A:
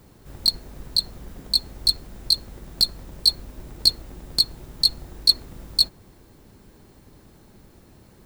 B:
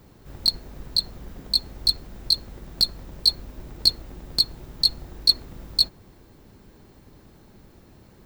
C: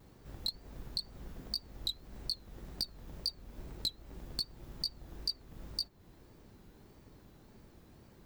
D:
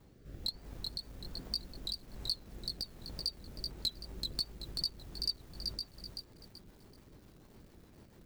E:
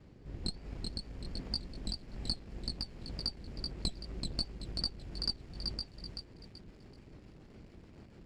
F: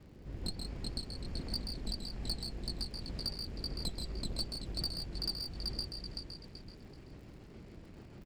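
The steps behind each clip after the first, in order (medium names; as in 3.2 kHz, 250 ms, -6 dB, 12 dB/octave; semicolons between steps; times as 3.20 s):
peaking EQ 10 kHz -6 dB 1 oct
compression 3:1, threshold -29 dBFS, peak gain reduction 14 dB; wow and flutter 130 cents; trim -7 dB
rotary cabinet horn 1.2 Hz, later 7 Hz, at 4.04 s; bit-crushed delay 382 ms, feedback 35%, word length 10-bit, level -4 dB; trim +1 dB
comb filter that takes the minimum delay 0.41 ms; distance through air 100 m; trim +4.5 dB
saturation -28.5 dBFS, distortion -12 dB; crackle 36 per s -54 dBFS; loudspeakers at several distances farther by 45 m -6 dB, 56 m -8 dB; trim +1 dB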